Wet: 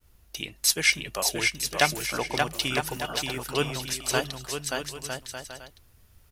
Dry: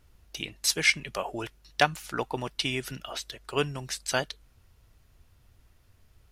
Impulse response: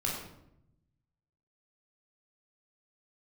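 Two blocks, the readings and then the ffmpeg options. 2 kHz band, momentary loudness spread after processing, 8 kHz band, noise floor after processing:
+2.5 dB, 14 LU, +6.0 dB, -59 dBFS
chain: -af "highshelf=f=9500:g=12,aecho=1:1:580|957|1202|1361|1465:0.631|0.398|0.251|0.158|0.1,agate=range=0.0224:threshold=0.00126:ratio=3:detection=peak"

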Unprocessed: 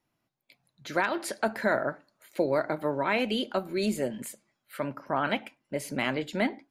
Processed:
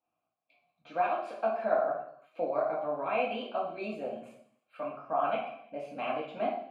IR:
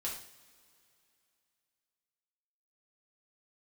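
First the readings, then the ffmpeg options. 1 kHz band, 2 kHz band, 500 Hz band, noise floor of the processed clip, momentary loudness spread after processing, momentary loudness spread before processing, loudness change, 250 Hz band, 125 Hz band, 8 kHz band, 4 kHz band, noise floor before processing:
+1.0 dB, -9.5 dB, -1.5 dB, -85 dBFS, 12 LU, 11 LU, -3.0 dB, -11.0 dB, -14.0 dB, under -25 dB, -11.5 dB, -81 dBFS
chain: -filter_complex "[0:a]asplit=3[s0][s1][s2];[s0]bandpass=f=730:t=q:w=8,volume=1[s3];[s1]bandpass=f=1090:t=q:w=8,volume=0.501[s4];[s2]bandpass=f=2440:t=q:w=8,volume=0.355[s5];[s3][s4][s5]amix=inputs=3:normalize=0,bass=f=250:g=11,treble=f=4000:g=-6[s6];[1:a]atrim=start_sample=2205,afade=t=out:st=0.4:d=0.01,atrim=end_sample=18081,asetrate=41895,aresample=44100[s7];[s6][s7]afir=irnorm=-1:irlink=0,volume=2"

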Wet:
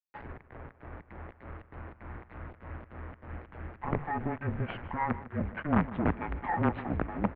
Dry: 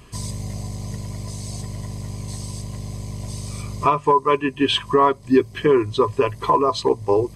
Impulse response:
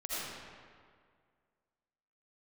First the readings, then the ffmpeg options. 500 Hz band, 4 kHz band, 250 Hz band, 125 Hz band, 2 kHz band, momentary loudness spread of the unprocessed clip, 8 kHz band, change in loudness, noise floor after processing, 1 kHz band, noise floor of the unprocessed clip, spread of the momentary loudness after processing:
-20.0 dB, -30.0 dB, -9.0 dB, -8.0 dB, -7.5 dB, 14 LU, under -40 dB, -11.5 dB, -60 dBFS, -14.5 dB, -42 dBFS, 18 LU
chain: -filter_complex "[0:a]bandreject=f=50:t=h:w=6,bandreject=f=100:t=h:w=6,bandreject=f=150:t=h:w=6,bandreject=f=200:t=h:w=6,bandreject=f=250:t=h:w=6,agate=range=0.251:threshold=0.0282:ratio=16:detection=peak,asubboost=boost=10.5:cutoff=200,acompressor=threshold=0.0282:ratio=1.5,alimiter=limit=0.0891:level=0:latency=1:release=32,acrossover=split=660[s0][s1];[s0]aeval=exprs='val(0)*(1-1/2+1/2*cos(2*PI*3.3*n/s))':c=same[s2];[s1]aeval=exprs='val(0)*(1-1/2-1/2*cos(2*PI*3.3*n/s))':c=same[s3];[s2][s3]amix=inputs=2:normalize=0,aresample=11025,acrusher=bits=5:dc=4:mix=0:aa=0.000001,aresample=44100,asoftclip=type=tanh:threshold=0.119,asplit=2[s4][s5];[s5]aecho=0:1:152:0.15[s6];[s4][s6]amix=inputs=2:normalize=0,highpass=f=190:t=q:w=0.5412,highpass=f=190:t=q:w=1.307,lowpass=f=2200:t=q:w=0.5176,lowpass=f=2200:t=q:w=0.7071,lowpass=f=2200:t=q:w=1.932,afreqshift=-160,volume=2.51"

